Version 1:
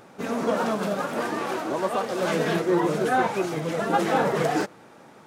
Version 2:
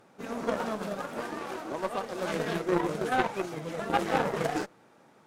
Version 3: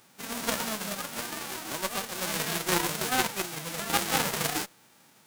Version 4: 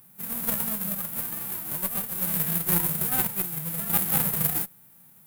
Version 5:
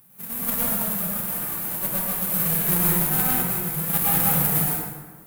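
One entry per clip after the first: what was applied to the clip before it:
Chebyshev shaper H 3 -13 dB, 6 -36 dB, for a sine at -10 dBFS
formants flattened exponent 0.3
FFT filter 100 Hz 0 dB, 170 Hz +4 dB, 280 Hz -9 dB, 1.8 kHz -10 dB, 5.9 kHz -15 dB, 13 kHz +10 dB; trim +3.5 dB
plate-style reverb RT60 1.5 s, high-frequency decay 0.55×, pre-delay 90 ms, DRR -5.5 dB; trim -1 dB

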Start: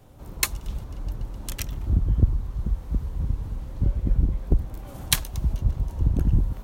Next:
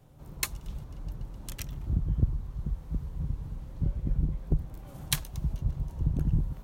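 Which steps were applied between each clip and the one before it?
peaking EQ 150 Hz +9.5 dB 0.35 oct; trim -7.5 dB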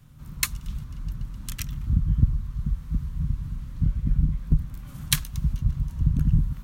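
high-order bell 530 Hz -14 dB; trim +6 dB

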